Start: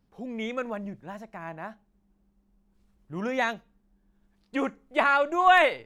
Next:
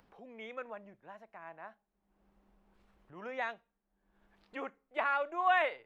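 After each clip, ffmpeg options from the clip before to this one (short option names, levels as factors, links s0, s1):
-filter_complex "[0:a]acrossover=split=410 3400:gain=0.224 1 0.2[s0][s1][s2];[s0][s1][s2]amix=inputs=3:normalize=0,acompressor=mode=upward:threshold=0.00708:ratio=2.5,volume=0.355"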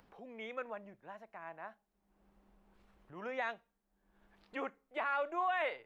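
-af "alimiter=level_in=1.5:limit=0.0631:level=0:latency=1:release=21,volume=0.668,volume=1.12"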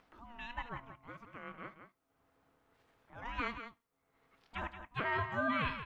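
-af "lowshelf=f=210:g=-11.5,aecho=1:1:71|178:0.112|0.316,aeval=exprs='val(0)*sin(2*PI*470*n/s)':c=same,volume=1.5"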